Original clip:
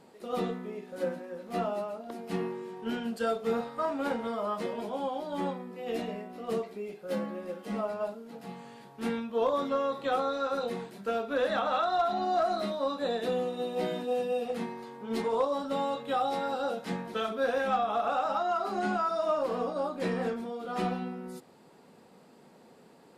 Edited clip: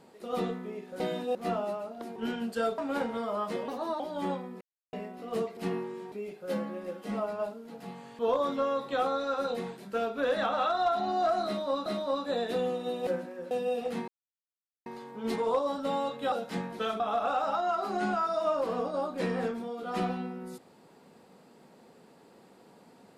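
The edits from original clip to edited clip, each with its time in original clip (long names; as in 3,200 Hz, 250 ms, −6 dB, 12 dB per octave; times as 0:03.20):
0:01.00–0:01.44: swap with 0:13.80–0:14.15
0:02.25–0:02.80: move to 0:06.73
0:03.42–0:03.88: remove
0:04.78–0:05.16: play speed 119%
0:05.77–0:06.09: silence
0:08.80–0:09.32: remove
0:12.59–0:12.99: repeat, 2 plays
0:14.72: splice in silence 0.78 s
0:16.18–0:16.67: remove
0:17.35–0:17.82: remove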